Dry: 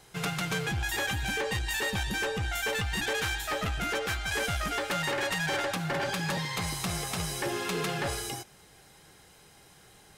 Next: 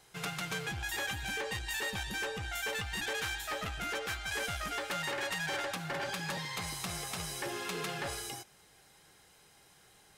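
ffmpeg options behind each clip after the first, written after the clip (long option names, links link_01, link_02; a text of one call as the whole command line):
ffmpeg -i in.wav -af "lowshelf=frequency=470:gain=-5,volume=-4.5dB" out.wav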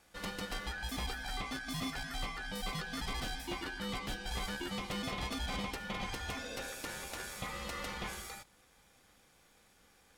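ffmpeg -i in.wav -af "aeval=exprs='val(0)*sin(2*PI*1600*n/s)':channel_layout=same,tiltshelf=frequency=680:gain=4.5,volume=1.5dB" out.wav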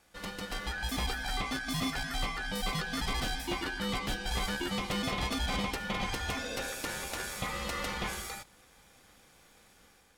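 ffmpeg -i in.wav -af "dynaudnorm=framelen=410:gausssize=3:maxgain=5.5dB" out.wav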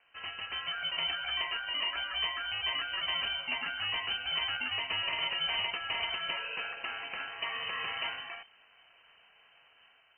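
ffmpeg -i in.wav -af "lowpass=frequency=2600:width_type=q:width=0.5098,lowpass=frequency=2600:width_type=q:width=0.6013,lowpass=frequency=2600:width_type=q:width=0.9,lowpass=frequency=2600:width_type=q:width=2.563,afreqshift=-3100" out.wav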